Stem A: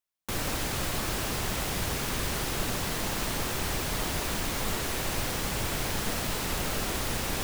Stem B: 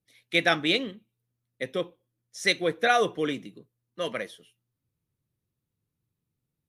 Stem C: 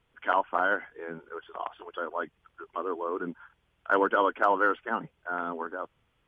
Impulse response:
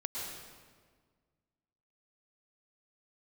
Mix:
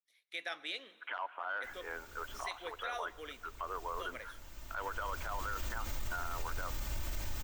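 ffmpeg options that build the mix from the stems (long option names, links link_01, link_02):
-filter_complex "[0:a]asubboost=boost=4.5:cutoff=120,aecho=1:1:3.3:0.65,aexciter=amount=1.2:drive=1.1:freq=6100,adelay=1350,volume=-14dB[link_01];[1:a]highpass=680,acompressor=threshold=-22dB:ratio=6,volume=-13dB,asplit=3[link_02][link_03][link_04];[link_03]volume=-22dB[link_05];[2:a]asoftclip=type=tanh:threshold=-13dB,acompressor=threshold=-32dB:ratio=6,highpass=800,adelay=850,volume=1.5dB,asplit=2[link_06][link_07];[link_07]volume=-23dB[link_08];[link_04]apad=whole_len=387546[link_09];[link_01][link_09]sidechaincompress=threshold=-57dB:ratio=12:attack=11:release=1200[link_10];[3:a]atrim=start_sample=2205[link_11];[link_05][link_08]amix=inputs=2:normalize=0[link_12];[link_12][link_11]afir=irnorm=-1:irlink=0[link_13];[link_10][link_02][link_06][link_13]amix=inputs=4:normalize=0,alimiter=level_in=5dB:limit=-24dB:level=0:latency=1:release=30,volume=-5dB"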